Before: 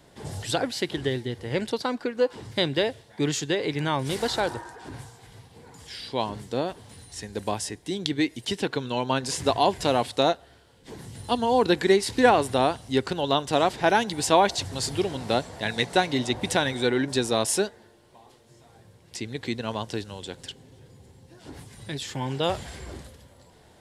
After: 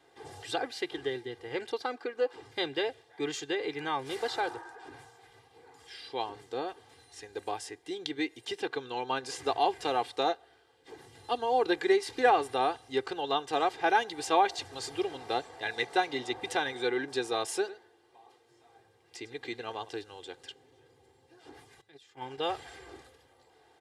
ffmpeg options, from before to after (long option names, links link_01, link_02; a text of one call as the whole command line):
ffmpeg -i in.wav -filter_complex "[0:a]asettb=1/sr,asplit=3[link_01][link_02][link_03];[link_01]atrim=end=17.574[link_04];[link_02]atrim=start=17.57:end=19.89,asetpts=PTS-STARTPTS,afade=type=in:duration=0.004:curve=qsin,afade=type=out:start_time=2.316:duration=0.004:curve=qsin,aecho=1:1:104:0.168,atrim=end_sample=102312[link_05];[link_03]atrim=start=19.886[link_06];[link_04][link_05]acrossfade=duration=0.004:curve1=hsin:curve2=qsin[link_07];[link_07][link_06]acrossfade=duration=0.004:curve1=qsin:curve2=hsin,asettb=1/sr,asplit=3[link_08][link_09][link_10];[link_08]atrim=end=21.814[link_11];[link_09]atrim=start=21.81:end=22.38,asetpts=PTS-STARTPTS,afade=type=in:duration=0.004:curve=qsin,afade=type=out:start_time=0.566:duration=0.004:curve=qsin,agate=range=-17dB:threshold=-30dB:ratio=16:release=100:detection=peak[link_12];[link_10]atrim=start=22.376[link_13];[link_11][link_12]acrossfade=duration=0.004:curve1=hsin:curve2=qsin[link_14];[link_14][link_13]acrossfade=duration=0.004:curve1=qsin:curve2=hsin,highpass=frequency=640:poles=1,highshelf=frequency=4000:gain=-12,aecho=1:1:2.5:0.75,volume=-4dB" out.wav